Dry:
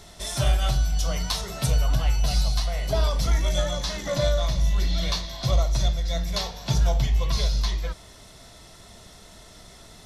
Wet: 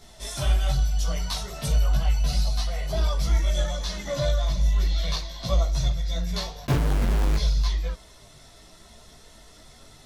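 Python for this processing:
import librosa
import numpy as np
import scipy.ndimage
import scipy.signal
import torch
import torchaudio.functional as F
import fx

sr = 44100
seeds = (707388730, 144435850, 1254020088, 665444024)

y = fx.schmitt(x, sr, flips_db=-25.5, at=(6.65, 7.37))
y = fx.chorus_voices(y, sr, voices=6, hz=0.31, base_ms=17, depth_ms=4.9, mix_pct=55)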